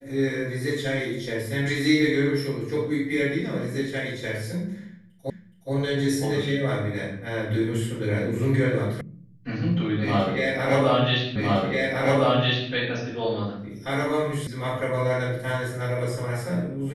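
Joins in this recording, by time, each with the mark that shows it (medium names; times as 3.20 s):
5.30 s: repeat of the last 0.42 s
9.01 s: sound stops dead
11.36 s: repeat of the last 1.36 s
14.47 s: sound stops dead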